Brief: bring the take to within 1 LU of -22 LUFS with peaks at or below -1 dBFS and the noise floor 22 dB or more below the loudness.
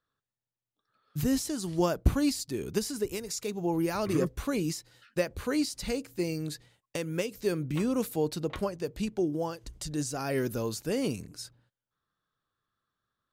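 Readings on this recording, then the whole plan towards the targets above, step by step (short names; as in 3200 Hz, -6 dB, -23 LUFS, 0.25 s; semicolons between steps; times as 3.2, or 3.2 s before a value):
loudness -31.5 LUFS; peak -11.0 dBFS; loudness target -22.0 LUFS
-> gain +9.5 dB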